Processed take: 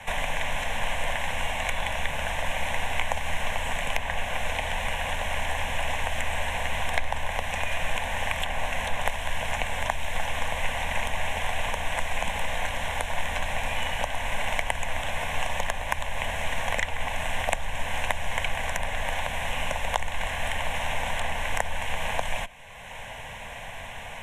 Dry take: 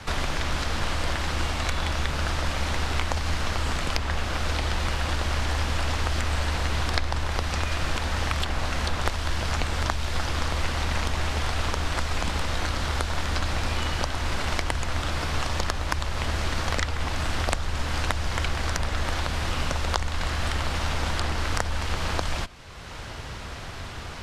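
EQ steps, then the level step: peaking EQ 67 Hz -14.5 dB 2.8 oct; peaking EQ 4.5 kHz -4 dB 0.64 oct; static phaser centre 1.3 kHz, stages 6; +4.5 dB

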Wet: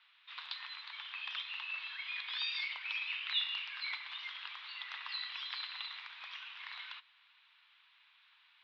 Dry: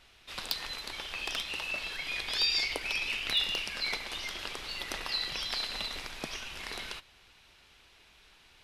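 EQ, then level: elliptic band-pass 1–3.8 kHz, stop band 60 dB; -4.5 dB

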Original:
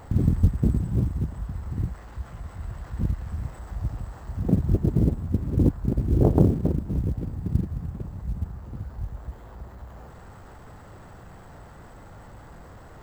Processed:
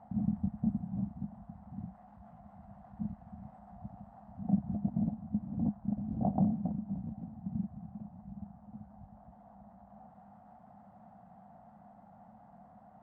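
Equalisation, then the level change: two resonant band-passes 390 Hz, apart 1.8 oct; 0.0 dB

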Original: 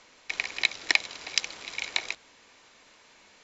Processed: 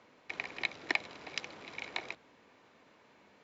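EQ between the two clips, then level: high-pass 130 Hz 12 dB/octave; low-pass 2.5 kHz 6 dB/octave; tilt EQ -2.5 dB/octave; -3.0 dB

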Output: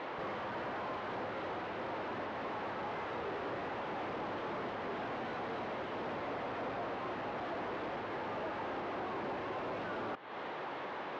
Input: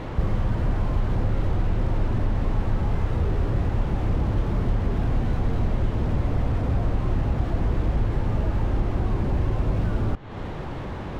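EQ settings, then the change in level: high-pass 350 Hz 12 dB/octave; distance through air 190 m; bass shelf 460 Hz -11 dB; +1.0 dB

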